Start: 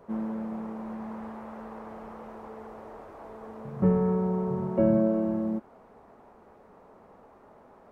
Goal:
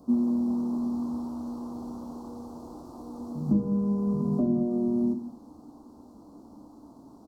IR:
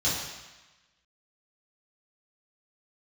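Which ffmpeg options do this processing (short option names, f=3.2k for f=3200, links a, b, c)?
-filter_complex "[0:a]acompressor=threshold=-29dB:ratio=6,firequalizer=gain_entry='entry(160,0);entry(260,13);entry(420,-6);entry(970,-1);entry(1700,-29);entry(3900,14)':delay=0.05:min_phase=1,asplit=2[a][b];[1:a]atrim=start_sample=2205,afade=t=out:st=0.33:d=0.01,atrim=end_sample=14994[c];[b][c]afir=irnorm=-1:irlink=0,volume=-15dB[d];[a][d]amix=inputs=2:normalize=0,asetrate=48000,aresample=44100,lowshelf=f=440:g=7,volume=-4dB"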